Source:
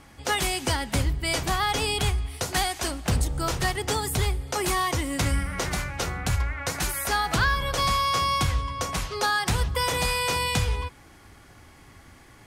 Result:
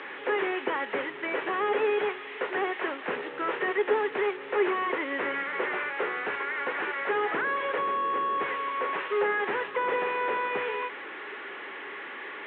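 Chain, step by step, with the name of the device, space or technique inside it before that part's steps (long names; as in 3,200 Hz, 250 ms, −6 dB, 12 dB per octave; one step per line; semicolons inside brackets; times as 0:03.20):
digital answering machine (band-pass filter 330–3,300 Hz; linear delta modulator 16 kbit/s, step −38 dBFS; loudspeaker in its box 380–4,100 Hz, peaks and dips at 410 Hz +9 dB, 700 Hz −8 dB, 1,800 Hz +6 dB, 3,900 Hz +4 dB)
level +3.5 dB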